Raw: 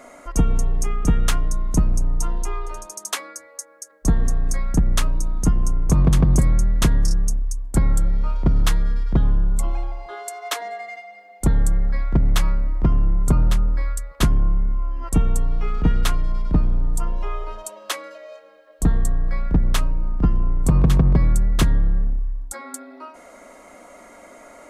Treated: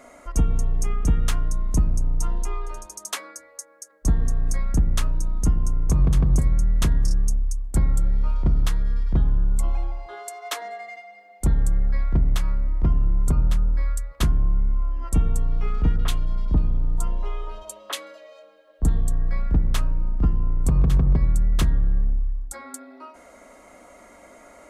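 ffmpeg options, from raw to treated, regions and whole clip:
ffmpeg -i in.wav -filter_complex "[0:a]asettb=1/sr,asplit=3[link_01][link_02][link_03];[link_01]atrim=end=15.964[link_04];[link_02]atrim=start=15.96:end=19.13,asetpts=PTS-STARTPTS,afade=type=in:duration=0.004:curve=qsin,afade=type=out:start_time=3.166:duration=0.004:curve=qsin,equalizer=frequency=3300:width_type=o:width=0.52:gain=4,bandreject=frequency=5300:width=19,acrossover=split=1800[link_05][link_06];[link_06]adelay=30[link_07];[link_05][link_07]amix=inputs=2:normalize=0,atrim=end_sample=139797[link_08];[link_03]atrim=start=19.126[link_09];[link_04][link_08]acrossfade=duration=0.004:curve1=hsin:curve2=qsin[link_10];[link_10][link_09]acrossfade=duration=0.004:curve1=qsin:curve2=hsin,equalizer=frequency=62:width=0.84:gain=7.5,bandreject=frequency=56.29:width_type=h:width=4,bandreject=frequency=112.58:width_type=h:width=4,bandreject=frequency=168.87:width_type=h:width=4,bandreject=frequency=225.16:width_type=h:width=4,bandreject=frequency=281.45:width_type=h:width=4,bandreject=frequency=337.74:width_type=h:width=4,bandreject=frequency=394.03:width_type=h:width=4,bandreject=frequency=450.32:width_type=h:width=4,bandreject=frequency=506.61:width_type=h:width=4,bandreject=frequency=562.9:width_type=h:width=4,bandreject=frequency=619.19:width_type=h:width=4,bandreject=frequency=675.48:width_type=h:width=4,bandreject=frequency=731.77:width_type=h:width=4,bandreject=frequency=788.06:width_type=h:width=4,bandreject=frequency=844.35:width_type=h:width=4,bandreject=frequency=900.64:width_type=h:width=4,bandreject=frequency=956.93:width_type=h:width=4,bandreject=frequency=1013.22:width_type=h:width=4,bandreject=frequency=1069.51:width_type=h:width=4,bandreject=frequency=1125.8:width_type=h:width=4,bandreject=frequency=1182.09:width_type=h:width=4,bandreject=frequency=1238.38:width_type=h:width=4,bandreject=frequency=1294.67:width_type=h:width=4,bandreject=frequency=1350.96:width_type=h:width=4,bandreject=frequency=1407.25:width_type=h:width=4,bandreject=frequency=1463.54:width_type=h:width=4,bandreject=frequency=1519.83:width_type=h:width=4,bandreject=frequency=1576.12:width_type=h:width=4,bandreject=frequency=1632.41:width_type=h:width=4,bandreject=frequency=1688.7:width_type=h:width=4,bandreject=frequency=1744.99:width_type=h:width=4,bandreject=frequency=1801.28:width_type=h:width=4,bandreject=frequency=1857.57:width_type=h:width=4,alimiter=limit=-7dB:level=0:latency=1:release=464,volume=-3.5dB" out.wav

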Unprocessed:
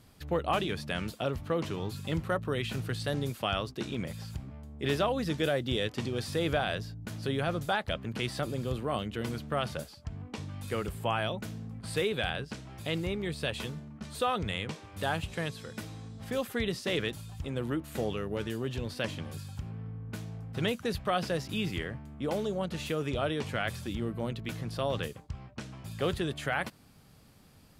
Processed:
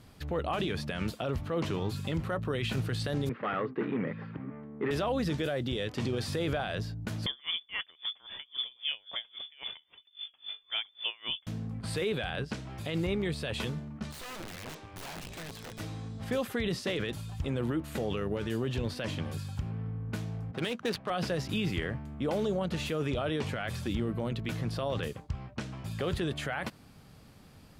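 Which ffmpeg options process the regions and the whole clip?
ffmpeg -i in.wav -filter_complex "[0:a]asettb=1/sr,asplit=3[link_01][link_02][link_03];[link_01]atrim=end=3.294[link_04];[link_02]atrim=start=3.29:end=4.91,asetpts=PTS-STARTPTS,afade=type=in:duration=0.004:curve=qsin,afade=type=out:start_time=1.616:duration=0.004:curve=qsin,volume=31.5dB,asoftclip=hard,volume=-31.5dB,highpass=frequency=140:width=0.5412,highpass=frequency=140:width=1.3066,equalizer=frequency=270:width_type=q:width=4:gain=6,equalizer=frequency=450:width_type=q:width=4:gain=8,equalizer=frequency=690:width_type=q:width=4:gain=-5,equalizer=frequency=1200:width_type=q:width=4:gain=5,equalizer=frequency=1900:width_type=q:width=4:gain=6,lowpass=frequency=2300:width=0.5412,lowpass=frequency=2300:width=1.3066[link_05];[link_03]atrim=start=4.906[link_06];[link_04][link_05]acrossfade=duration=0.004:curve1=hsin:curve2=qsin[link_07];[link_07][link_06]acrossfade=duration=0.004:curve1=qsin:curve2=hsin,asettb=1/sr,asplit=3[link_08][link_09][link_10];[link_08]atrim=end=7.264[link_11];[link_09]atrim=start=7.26:end=11.47,asetpts=PTS-STARTPTS,afade=type=in:duration=0.004:curve=qsin,afade=type=out:start_time=4.206:duration=0.004:curve=qsin,lowpass=frequency=3100:width_type=q:width=0.5098,lowpass=frequency=3100:width_type=q:width=0.6013,lowpass=frequency=3100:width_type=q:width=0.9,lowpass=frequency=3100:width_type=q:width=2.563,afreqshift=-3600,aeval=exprs='val(0)*pow(10,-32*(0.5-0.5*cos(2*PI*3.7*n/s))/20)':channel_layout=same[link_12];[link_10]atrim=start=11.466[link_13];[link_11][link_12]acrossfade=duration=0.004:curve1=hsin:curve2=qsin[link_14];[link_14][link_13]acrossfade=duration=0.004:curve1=qsin:curve2=hsin,asettb=1/sr,asplit=3[link_15][link_16][link_17];[link_15]atrim=end=14.114[link_18];[link_16]atrim=start=14.11:end=15.8,asetpts=PTS-STARTPTS,afade=type=in:duration=0.004:curve=qsin,afade=type=out:start_time=1.686:duration=0.004:curve=qsin,acompressor=threshold=-32dB:ratio=16:attack=3.2:release=140:knee=1:detection=peak,aeval=exprs='(tanh(63.1*val(0)+0.6)-tanh(0.6))/63.1':channel_layout=same,aeval=exprs='(mod(89.1*val(0)+1,2)-1)/89.1':channel_layout=same[link_19];[link_17]atrim=start=15.796[link_20];[link_18][link_19]acrossfade=duration=0.004:curve1=hsin:curve2=qsin[link_21];[link_21][link_20]acrossfade=duration=0.004:curve1=qsin:curve2=hsin,asettb=1/sr,asplit=3[link_22][link_23][link_24];[link_22]atrim=end=20.514[link_25];[link_23]atrim=start=20.51:end=21.1,asetpts=PTS-STARTPTS,afade=type=in:duration=0.004:curve=qsin,afade=type=out:start_time=0.586:duration=0.004:curve=qsin,highpass=210,aemphasis=mode=production:type=75fm,adynamicsmooth=sensitivity=8:basefreq=980[link_26];[link_24]atrim=start=21.096[link_27];[link_25][link_26]acrossfade=duration=0.004:curve1=hsin:curve2=qsin[link_28];[link_28][link_27]acrossfade=duration=0.004:curve1=qsin:curve2=hsin,highshelf=frequency=6300:gain=-6.5,alimiter=level_in=2.5dB:limit=-24dB:level=0:latency=1:release=22,volume=-2.5dB,volume=4dB" out.wav

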